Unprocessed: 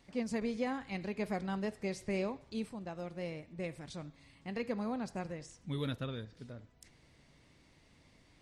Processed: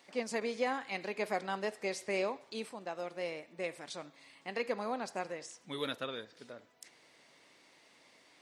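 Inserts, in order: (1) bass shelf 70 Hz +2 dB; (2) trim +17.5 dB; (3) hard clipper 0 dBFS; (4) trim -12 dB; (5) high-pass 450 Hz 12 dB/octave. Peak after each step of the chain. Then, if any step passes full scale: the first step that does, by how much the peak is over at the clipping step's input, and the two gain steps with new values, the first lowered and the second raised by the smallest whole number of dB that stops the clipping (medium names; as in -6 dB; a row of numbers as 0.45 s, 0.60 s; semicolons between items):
-23.0 dBFS, -5.5 dBFS, -5.5 dBFS, -17.5 dBFS, -20.0 dBFS; nothing clips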